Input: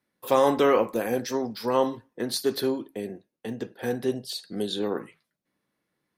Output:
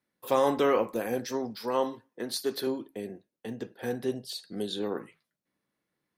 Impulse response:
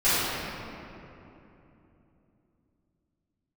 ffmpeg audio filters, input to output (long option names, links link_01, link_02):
-filter_complex "[0:a]asettb=1/sr,asplit=3[link_01][link_02][link_03];[link_01]atrim=end=1.564[link_04];[link_02]atrim=start=1.56:end=2.67,asetpts=PTS-STARTPTS,afade=type=in:duration=0.004:curve=qsin,afade=type=out:start_time=1.106:duration=0.004:curve=qsin,highpass=frequency=220:poles=1[link_05];[link_03]atrim=start=2.666[link_06];[link_04][link_05]acrossfade=duration=0.004:curve1=hsin:curve2=qsin[link_07];[link_07][link_06]acrossfade=duration=0.004:curve1=qsin:curve2=hsin,volume=-4dB"